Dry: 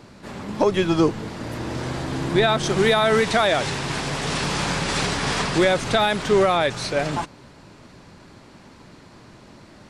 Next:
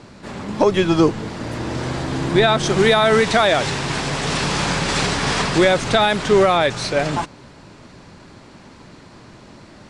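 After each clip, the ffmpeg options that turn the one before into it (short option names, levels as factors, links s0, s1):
-af "lowpass=f=10000:w=0.5412,lowpass=f=10000:w=1.3066,volume=1.5"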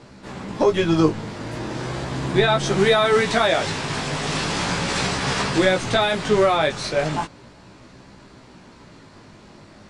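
-af "flanger=delay=15:depth=4.6:speed=0.37"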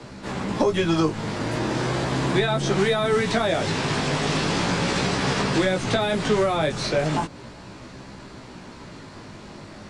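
-filter_complex "[0:a]acrossover=split=110|250|530|7000[s0][s1][s2][s3][s4];[s0]acompressor=threshold=0.00708:ratio=4[s5];[s1]acompressor=threshold=0.0251:ratio=4[s6];[s2]acompressor=threshold=0.0251:ratio=4[s7];[s3]acompressor=threshold=0.0282:ratio=4[s8];[s4]acompressor=threshold=0.00251:ratio=4[s9];[s5][s6][s7][s8][s9]amix=inputs=5:normalize=0,volume=1.78"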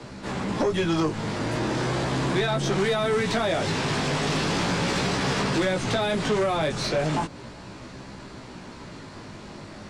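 -af "asoftclip=type=tanh:threshold=0.133"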